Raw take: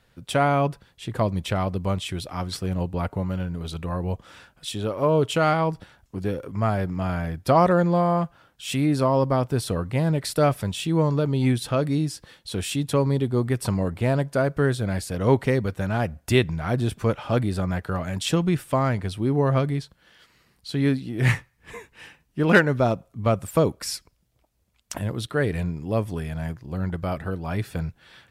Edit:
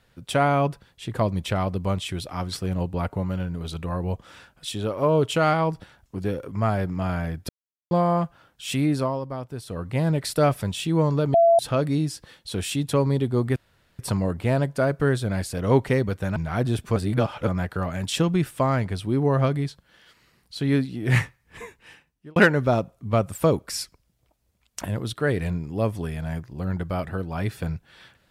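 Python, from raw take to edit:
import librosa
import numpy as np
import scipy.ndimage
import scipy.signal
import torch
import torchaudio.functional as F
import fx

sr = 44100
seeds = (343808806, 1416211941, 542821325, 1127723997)

y = fx.edit(x, sr, fx.silence(start_s=7.49, length_s=0.42),
    fx.fade_down_up(start_s=8.75, length_s=1.37, db=-10.5, fade_s=0.45, curve='qsin'),
    fx.bleep(start_s=11.34, length_s=0.25, hz=674.0, db=-12.5),
    fx.insert_room_tone(at_s=13.56, length_s=0.43),
    fx.cut(start_s=15.93, length_s=0.56),
    fx.reverse_span(start_s=17.09, length_s=0.51),
    fx.fade_out_span(start_s=21.77, length_s=0.72), tone=tone)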